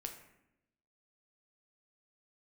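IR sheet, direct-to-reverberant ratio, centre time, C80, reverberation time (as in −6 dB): 3.5 dB, 20 ms, 10.5 dB, 0.85 s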